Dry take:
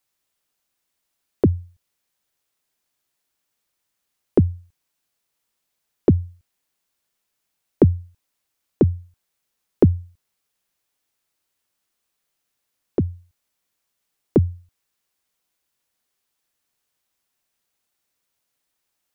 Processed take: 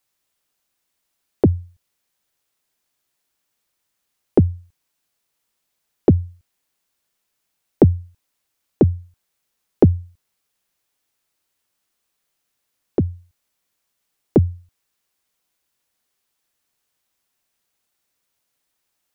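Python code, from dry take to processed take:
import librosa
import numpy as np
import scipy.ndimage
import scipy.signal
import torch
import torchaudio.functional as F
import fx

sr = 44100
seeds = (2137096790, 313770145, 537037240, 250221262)

y = fx.doppler_dist(x, sr, depth_ms=0.18)
y = y * librosa.db_to_amplitude(2.0)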